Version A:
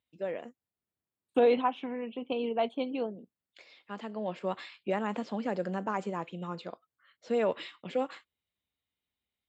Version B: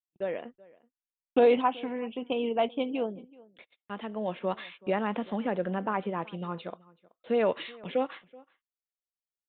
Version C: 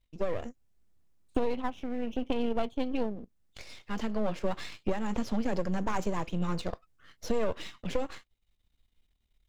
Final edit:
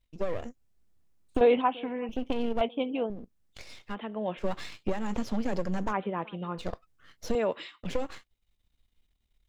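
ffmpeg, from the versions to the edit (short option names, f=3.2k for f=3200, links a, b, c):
-filter_complex "[1:a]asplit=4[a][b][c][d];[2:a]asplit=6[e][f][g][h][i][j];[e]atrim=end=1.412[k];[a]atrim=start=1.408:end=2.092[l];[f]atrim=start=2.088:end=2.612[m];[b]atrim=start=2.608:end=3.102[n];[g]atrim=start=3.098:end=3.96[o];[c]atrim=start=3.9:end=4.43[p];[h]atrim=start=4.37:end=5.94[q];[d]atrim=start=5.88:end=6.63[r];[i]atrim=start=6.57:end=7.352[s];[0:a]atrim=start=7.348:end=7.832[t];[j]atrim=start=7.828[u];[k][l]acrossfade=d=0.004:c1=hsin:c2=hsin[v];[v][m]acrossfade=d=0.004:c1=hsin:c2=hsin[w];[w][n]acrossfade=d=0.004:c1=hsin:c2=hsin[x];[x][o]acrossfade=d=0.004:c1=hsin:c2=hsin[y];[y][p]acrossfade=d=0.06:c1=tri:c2=tri[z];[z][q]acrossfade=d=0.06:c1=tri:c2=tri[aa];[aa][r]acrossfade=d=0.06:c1=tri:c2=tri[ab];[ab][s]acrossfade=d=0.06:c1=tri:c2=tri[ac];[ac][t]acrossfade=d=0.004:c1=hsin:c2=hsin[ad];[ad][u]acrossfade=d=0.004:c1=hsin:c2=hsin"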